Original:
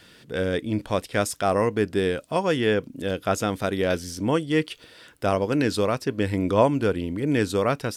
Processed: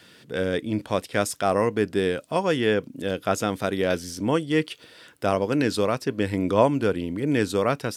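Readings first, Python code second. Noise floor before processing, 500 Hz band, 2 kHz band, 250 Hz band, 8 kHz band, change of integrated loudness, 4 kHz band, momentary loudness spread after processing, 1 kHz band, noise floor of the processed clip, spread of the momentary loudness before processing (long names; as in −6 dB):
−52 dBFS, 0.0 dB, 0.0 dB, 0.0 dB, 0.0 dB, 0.0 dB, 0.0 dB, 6 LU, 0.0 dB, −52 dBFS, 5 LU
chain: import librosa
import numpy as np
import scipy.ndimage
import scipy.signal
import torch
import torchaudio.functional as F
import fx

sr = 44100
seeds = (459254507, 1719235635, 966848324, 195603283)

y = scipy.signal.sosfilt(scipy.signal.butter(2, 98.0, 'highpass', fs=sr, output='sos'), x)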